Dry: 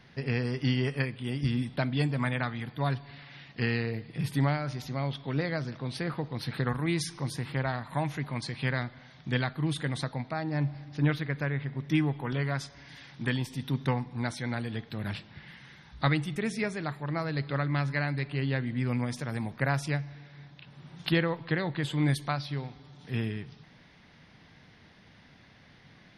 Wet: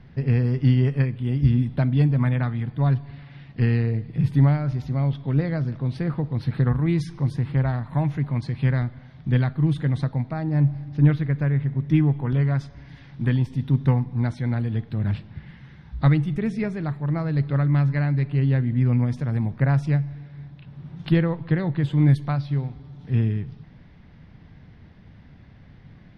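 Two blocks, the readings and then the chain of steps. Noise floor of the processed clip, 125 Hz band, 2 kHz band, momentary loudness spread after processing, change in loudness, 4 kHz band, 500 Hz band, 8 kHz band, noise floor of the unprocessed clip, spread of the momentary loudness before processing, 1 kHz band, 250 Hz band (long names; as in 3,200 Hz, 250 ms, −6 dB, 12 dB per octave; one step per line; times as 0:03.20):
−48 dBFS, +11.0 dB, −2.0 dB, 8 LU, +8.5 dB, can't be measured, +3.0 dB, below −10 dB, −57 dBFS, 12 LU, +0.5 dB, +7.5 dB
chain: RIAA equalisation playback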